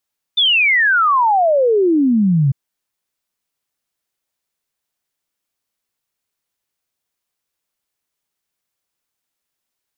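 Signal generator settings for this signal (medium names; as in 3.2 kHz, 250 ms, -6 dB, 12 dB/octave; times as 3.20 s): log sweep 3.6 kHz -> 130 Hz 2.15 s -10.5 dBFS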